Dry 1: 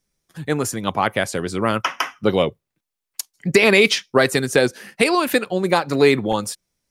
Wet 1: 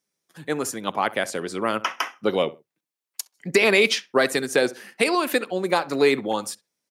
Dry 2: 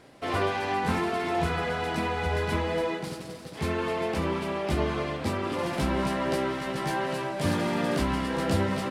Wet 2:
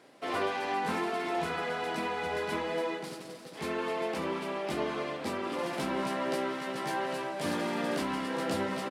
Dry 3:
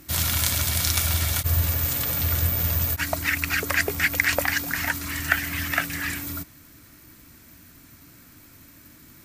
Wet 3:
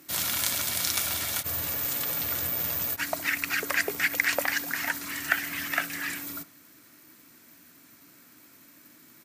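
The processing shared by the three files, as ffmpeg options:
-filter_complex "[0:a]highpass=230,asplit=2[a][b];[b]adelay=65,lowpass=f=1.7k:p=1,volume=-17dB,asplit=2[c][d];[d]adelay=65,lowpass=f=1.7k:p=1,volume=0.26[e];[a][c][e]amix=inputs=3:normalize=0,volume=-3.5dB"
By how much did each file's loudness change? -4.0, -4.5, -4.0 LU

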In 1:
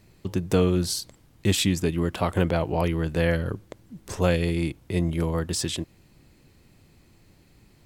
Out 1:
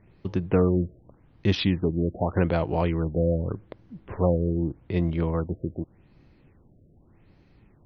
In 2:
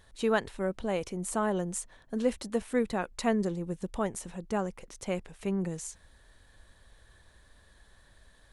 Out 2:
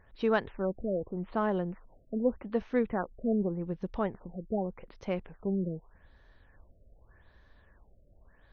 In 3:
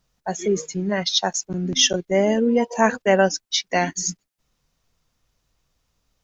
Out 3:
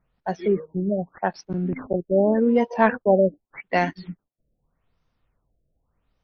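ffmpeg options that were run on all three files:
-af "adynamicsmooth=sensitivity=1:basefreq=3.4k,afftfilt=real='re*lt(b*sr/1024,660*pow(6700/660,0.5+0.5*sin(2*PI*0.84*pts/sr)))':imag='im*lt(b*sr/1024,660*pow(6700/660,0.5+0.5*sin(2*PI*0.84*pts/sr)))':win_size=1024:overlap=0.75"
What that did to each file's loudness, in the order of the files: -0.5, -0.5, -2.0 LU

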